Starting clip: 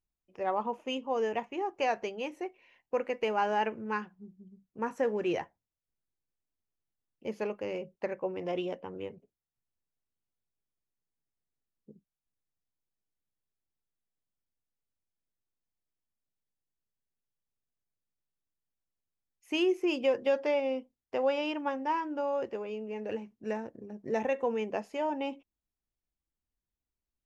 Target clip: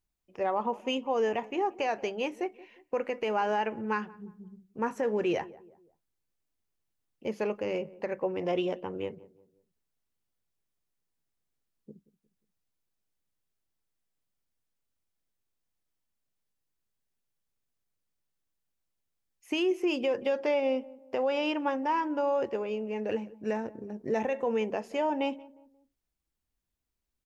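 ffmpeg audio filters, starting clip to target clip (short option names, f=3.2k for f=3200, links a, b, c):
-filter_complex "[0:a]alimiter=level_in=0.5dB:limit=-24dB:level=0:latency=1:release=102,volume=-0.5dB,asplit=2[a][b];[b]adelay=178,lowpass=f=900:p=1,volume=-19dB,asplit=2[c][d];[d]adelay=178,lowpass=f=900:p=1,volume=0.44,asplit=2[e][f];[f]adelay=178,lowpass=f=900:p=1,volume=0.44[g];[a][c][e][g]amix=inputs=4:normalize=0,volume=4.5dB"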